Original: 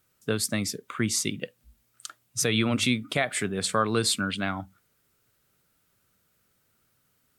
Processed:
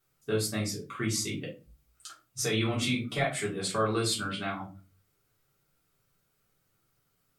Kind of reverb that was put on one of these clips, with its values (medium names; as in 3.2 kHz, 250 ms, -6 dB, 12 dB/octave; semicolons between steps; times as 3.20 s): simulated room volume 140 m³, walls furnished, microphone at 3.5 m; trim -11.5 dB